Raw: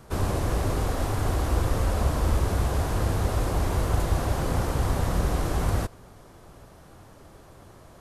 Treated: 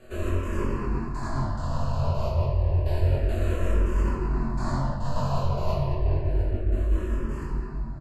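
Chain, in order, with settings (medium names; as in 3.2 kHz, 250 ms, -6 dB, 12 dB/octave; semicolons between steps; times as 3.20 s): band-stop 1.6 kHz, Q 14; on a send: delay 124 ms -4.5 dB; on the sum: trance gate "xx.x....x..x" 105 bpm -24 dB; rippled EQ curve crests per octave 1.4, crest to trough 9 dB; simulated room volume 190 m³, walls hard, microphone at 1 m; level rider gain up to 7 dB; distance through air 61 m; hum notches 60/120/180/240/300/360 Hz; reverse; compression 6:1, threshold -21 dBFS, peak gain reduction 13.5 dB; reverse; doubling 22 ms -2.5 dB; barber-pole phaser -0.3 Hz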